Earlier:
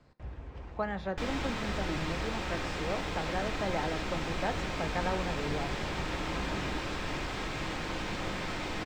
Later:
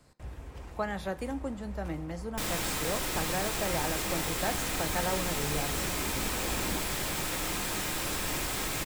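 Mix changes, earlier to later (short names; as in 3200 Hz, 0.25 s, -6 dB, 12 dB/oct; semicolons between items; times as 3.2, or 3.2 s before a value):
background: entry +1.20 s; master: remove air absorption 170 m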